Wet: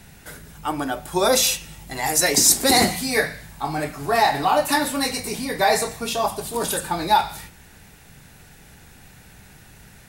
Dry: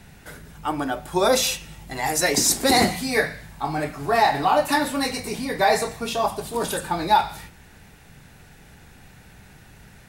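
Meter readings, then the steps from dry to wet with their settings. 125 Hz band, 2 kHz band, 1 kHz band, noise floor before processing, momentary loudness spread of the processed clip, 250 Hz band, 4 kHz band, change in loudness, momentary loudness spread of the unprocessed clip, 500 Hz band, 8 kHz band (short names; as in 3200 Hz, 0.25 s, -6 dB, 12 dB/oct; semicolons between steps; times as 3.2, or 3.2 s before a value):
0.0 dB, +1.0 dB, 0.0 dB, -49 dBFS, 13 LU, 0.0 dB, +3.0 dB, +2.0 dB, 10 LU, 0.0 dB, +5.0 dB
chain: high shelf 5100 Hz +7 dB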